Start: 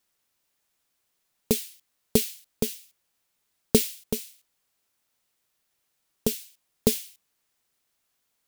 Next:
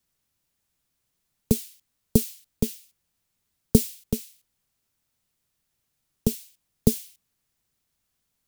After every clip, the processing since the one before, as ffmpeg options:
ffmpeg -i in.wav -filter_complex "[0:a]bass=frequency=250:gain=13,treble=frequency=4000:gain=2,acrossover=split=210|1200|4700[link_01][link_02][link_03][link_04];[link_03]alimiter=level_in=8dB:limit=-24dB:level=0:latency=1:release=234,volume=-8dB[link_05];[link_01][link_02][link_05][link_04]amix=inputs=4:normalize=0,volume=-3.5dB" out.wav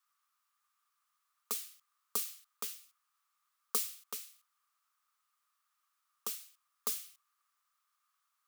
ffmpeg -i in.wav -af "highpass=frequency=1200:width_type=q:width=13,volume=-6dB" out.wav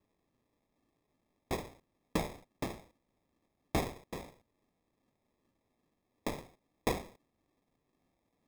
ffmpeg -i in.wav -af "aphaser=in_gain=1:out_gain=1:delay=2.9:decay=0.33:speed=0.34:type=triangular,acrusher=samples=30:mix=1:aa=0.000001,volume=1.5dB" out.wav

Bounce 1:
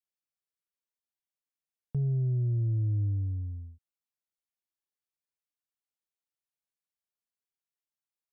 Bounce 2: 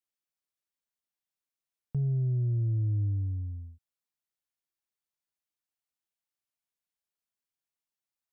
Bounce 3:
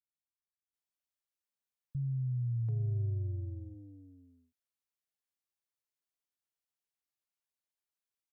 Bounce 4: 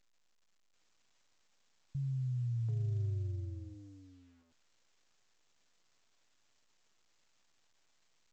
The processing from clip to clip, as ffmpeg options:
ffmpeg -i in.wav -af "equalizer=frequency=450:width_type=o:width=0.36:gain=-3.5" out.wav
ffmpeg -i in.wav -filter_complex "[0:a]acrossover=split=180[link_01][link_02];[link_02]adelay=740[link_03];[link_01][link_03]amix=inputs=2:normalize=0,volume=-4dB" out.wav
ffmpeg -i in.wav -af "volume=-2dB" -ar 16000 -c:a pcm_alaw out.wav

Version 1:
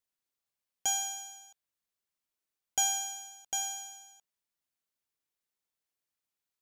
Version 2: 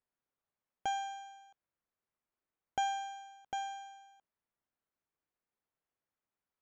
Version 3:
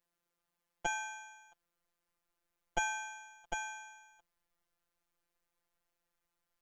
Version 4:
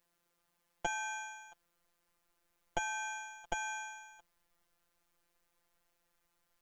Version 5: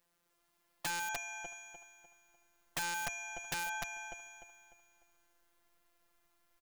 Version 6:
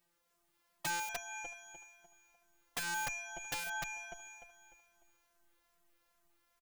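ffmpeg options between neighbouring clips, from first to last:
ffmpeg -i in.wav -af "lowpass=1600,volume=3.5dB" out.wav
ffmpeg -i in.wav -af "afftfilt=real='hypot(re,im)*cos(PI*b)':imag='0':win_size=1024:overlap=0.75,asubboost=boost=6.5:cutoff=70,volume=10dB" out.wav
ffmpeg -i in.wav -af "acompressor=threshold=-40dB:ratio=5,volume=7dB" out.wav
ffmpeg -i in.wav -filter_complex "[0:a]asplit=2[link_01][link_02];[link_02]aecho=0:1:299|598|897|1196|1495:0.631|0.227|0.0818|0.0294|0.0106[link_03];[link_01][link_03]amix=inputs=2:normalize=0,aeval=exprs='(mod(28.2*val(0)+1,2)-1)/28.2':channel_layout=same,volume=1dB" out.wav
ffmpeg -i in.wav -filter_complex "[0:a]asplit=2[link_01][link_02];[link_02]adelay=2.7,afreqshift=-2.4[link_03];[link_01][link_03]amix=inputs=2:normalize=1,volume=2.5dB" out.wav

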